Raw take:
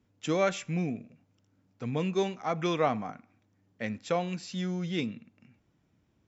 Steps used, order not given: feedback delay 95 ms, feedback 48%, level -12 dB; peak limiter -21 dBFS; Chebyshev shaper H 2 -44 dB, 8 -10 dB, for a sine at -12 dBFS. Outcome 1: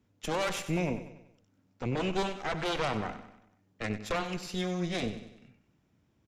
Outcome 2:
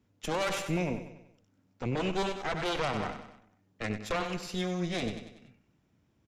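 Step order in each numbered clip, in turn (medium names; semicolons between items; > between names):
Chebyshev shaper > peak limiter > feedback delay; Chebyshev shaper > feedback delay > peak limiter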